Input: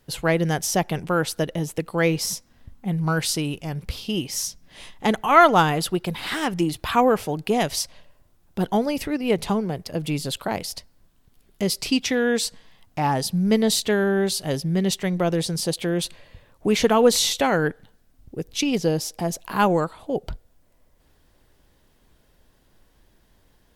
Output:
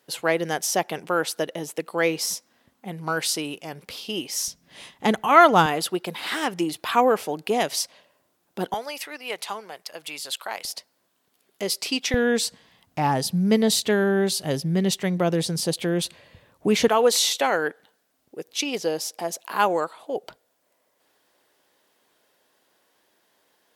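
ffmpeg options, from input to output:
ffmpeg -i in.wav -af "asetnsamples=nb_out_samples=441:pad=0,asendcmd='4.48 highpass f 120;5.66 highpass f 290;8.74 highpass f 930;10.65 highpass f 380;12.14 highpass f 100;16.88 highpass f 430',highpass=330" out.wav

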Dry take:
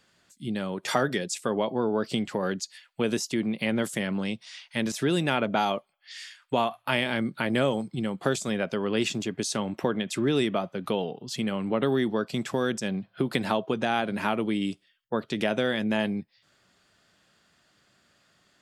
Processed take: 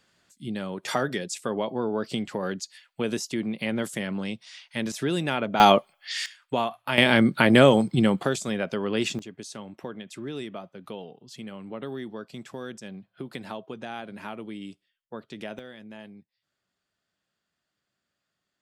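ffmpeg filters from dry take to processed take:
ffmpeg -i in.wav -af "asetnsamples=nb_out_samples=441:pad=0,asendcmd='5.6 volume volume 11dB;6.26 volume volume -1dB;6.98 volume volume 9dB;8.23 volume volume 0dB;9.19 volume volume -10.5dB;15.59 volume volume -17.5dB',volume=-1.5dB" out.wav

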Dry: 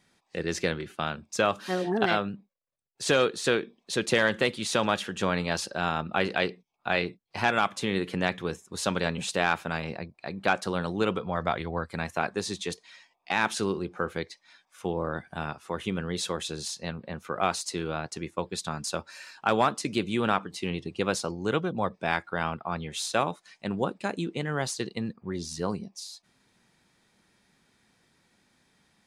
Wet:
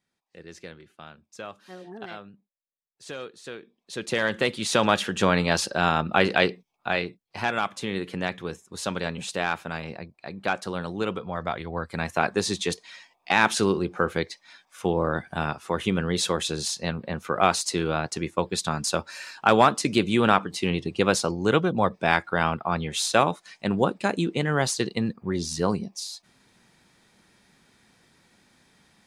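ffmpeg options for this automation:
ffmpeg -i in.wav -af "volume=13.5dB,afade=type=in:start_time=3.58:duration=0.38:silence=0.398107,afade=type=in:start_time=3.96:duration=1.1:silence=0.251189,afade=type=out:start_time=6.44:duration=0.65:silence=0.421697,afade=type=in:start_time=11.64:duration=0.72:silence=0.421697" out.wav

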